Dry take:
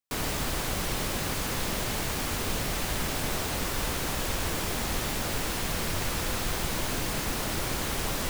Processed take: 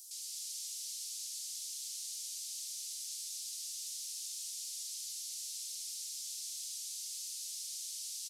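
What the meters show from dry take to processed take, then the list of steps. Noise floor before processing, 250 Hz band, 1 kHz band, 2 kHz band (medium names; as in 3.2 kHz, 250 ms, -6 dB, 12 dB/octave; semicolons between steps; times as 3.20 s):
-32 dBFS, under -40 dB, under -40 dB, -31.0 dB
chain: one-bit delta coder 64 kbps, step -44.5 dBFS; inverse Chebyshev high-pass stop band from 1.2 kHz, stop band 70 dB; on a send: delay 219 ms -4.5 dB; on the sum: trim +2.5 dB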